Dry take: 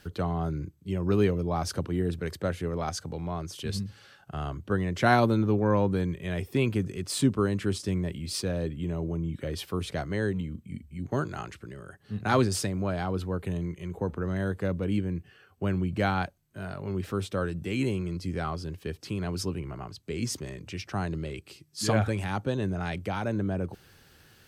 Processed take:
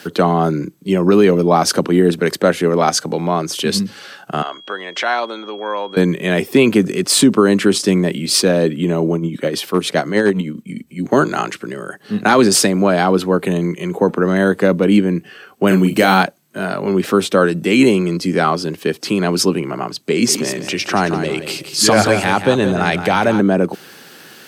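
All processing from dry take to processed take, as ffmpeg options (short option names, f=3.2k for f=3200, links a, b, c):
-filter_complex "[0:a]asettb=1/sr,asplit=3[a][b][c];[a]atrim=end=4.424[d];[b]atrim=start=4.42:end=5.97,asetpts=PTS-STARTPTS,afade=t=in:d=0.004:c=qsin,afade=t=out:st=1.546:d=0.004:c=qsin,acompressor=threshold=-35dB:ratio=2.5:attack=3.2:release=140:knee=1:detection=peak,aeval=exprs='val(0)+0.00178*sin(2*PI*3300*n/s)':c=same,highpass=660,lowpass=5.3k[e];[c]atrim=start=5.966[f];[d][e]acrossfade=d=0.004:c1=hsin:c2=qsin[g];[g][f]acrossfade=d=0.004:c1=qsin:c2=hsin,asettb=1/sr,asplit=3[h][i][j];[h]atrim=end=9.154[k];[i]atrim=start=9.15:end=11.03,asetpts=PTS-STARTPTS,afade=t=in:d=0.004:c=qsin,afade=t=out:st=1.876:d=0.004:c=qsin,tremolo=f=9.7:d=0.54,asoftclip=type=hard:threshold=-21.5dB[l];[j]atrim=start=11.026[m];[k][l]acrossfade=d=0.004:c1=hsin:c2=qsin[n];[n][m]acrossfade=d=0.004:c1=qsin:c2=hsin,asettb=1/sr,asplit=3[o][p][q];[o]atrim=end=15.674[r];[p]atrim=start=15.67:end=16.23,asetpts=PTS-STARTPTS,afade=t=in:d=0.004:c=qsin,afade=t=out:st=0.556:d=0.004:c=qsin,aemphasis=mode=production:type=50fm,asplit=2[s][t];[t]adelay=37,volume=-6.5dB[u];[s][u]amix=inputs=2:normalize=0,atrim=end_sample=24696[v];[q]atrim=start=16.226[w];[r][v]acrossfade=d=0.004:c1=hsin:c2=qsin[x];[x][w]acrossfade=d=0.004:c1=qsin:c2=hsin,asettb=1/sr,asplit=3[y][z][aa];[y]atrim=end=20.114[ab];[z]atrim=start=20.11:end=23.4,asetpts=PTS-STARTPTS,afade=t=in:d=0.004:c=qsin,afade=t=out:st=3.286:d=0.004:c=qsin,asubboost=boost=8.5:cutoff=87,acompressor=mode=upward:threshold=-33dB:ratio=2.5:attack=3.2:release=140:knee=2.83:detection=peak,aecho=1:1:175|350|525:0.335|0.0938|0.0263,atrim=end_sample=145089[ac];[aa]atrim=start=23.396[ad];[ab][ac]acrossfade=d=0.004:c1=hsin:c2=qsin[ae];[ae][ad]acrossfade=d=0.004:c1=qsin:c2=hsin,highpass=f=190:w=0.5412,highpass=f=190:w=1.3066,alimiter=level_in=19.5dB:limit=-1dB:release=50:level=0:latency=1,volume=-1dB"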